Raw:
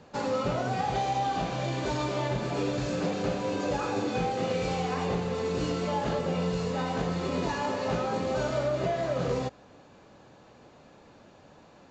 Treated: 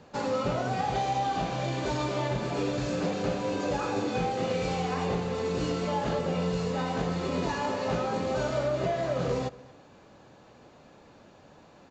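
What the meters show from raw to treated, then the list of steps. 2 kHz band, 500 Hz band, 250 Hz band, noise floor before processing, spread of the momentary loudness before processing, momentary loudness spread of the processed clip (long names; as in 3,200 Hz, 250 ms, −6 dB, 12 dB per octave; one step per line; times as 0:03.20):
0.0 dB, 0.0 dB, 0.0 dB, −55 dBFS, 2 LU, 2 LU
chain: slap from a distant wall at 39 metres, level −21 dB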